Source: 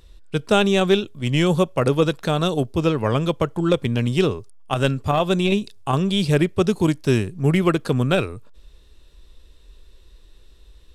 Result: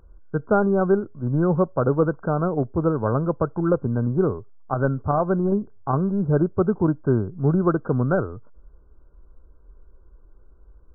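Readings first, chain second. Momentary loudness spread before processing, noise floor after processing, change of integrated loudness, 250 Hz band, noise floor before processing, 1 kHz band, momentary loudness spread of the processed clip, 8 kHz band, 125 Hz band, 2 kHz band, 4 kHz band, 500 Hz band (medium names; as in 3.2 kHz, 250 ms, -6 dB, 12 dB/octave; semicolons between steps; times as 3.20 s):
5 LU, -51 dBFS, -2.0 dB, -1.5 dB, -49 dBFS, -1.5 dB, 5 LU, under -40 dB, -1.5 dB, -7.5 dB, under -40 dB, -1.5 dB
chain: short-mantissa float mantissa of 6-bit; brick-wall FIR low-pass 1.6 kHz; trim -1.5 dB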